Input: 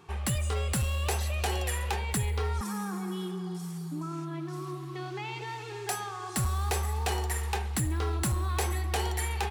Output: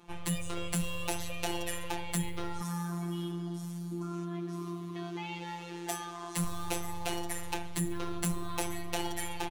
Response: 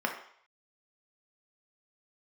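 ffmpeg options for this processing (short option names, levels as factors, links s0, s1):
-af "aeval=exprs='val(0)*sin(2*PI*37*n/s)':c=same,aecho=1:1:5.5:0.41,afftfilt=real='hypot(re,im)*cos(PI*b)':imag='0':win_size=1024:overlap=0.75,volume=1.33"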